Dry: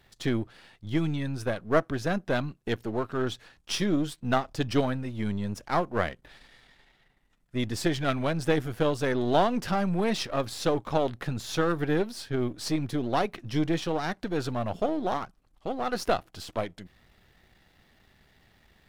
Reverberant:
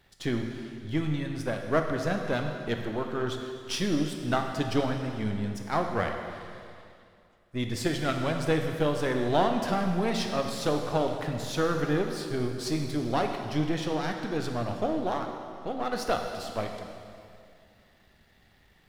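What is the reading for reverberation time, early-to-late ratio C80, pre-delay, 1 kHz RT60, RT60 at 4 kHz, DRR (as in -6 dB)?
2.4 s, 5.5 dB, 5 ms, 2.4 s, 2.2 s, 3.5 dB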